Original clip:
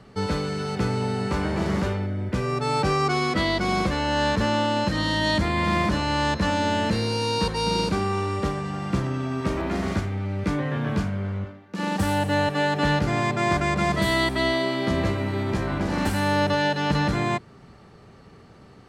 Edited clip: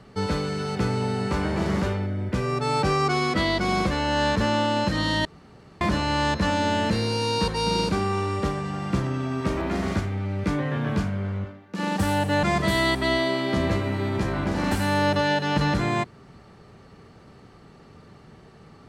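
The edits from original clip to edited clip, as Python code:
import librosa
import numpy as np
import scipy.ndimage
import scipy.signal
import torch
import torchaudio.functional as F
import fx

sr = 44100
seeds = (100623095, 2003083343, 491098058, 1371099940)

y = fx.edit(x, sr, fx.room_tone_fill(start_s=5.25, length_s=0.56),
    fx.cut(start_s=12.43, length_s=1.34), tone=tone)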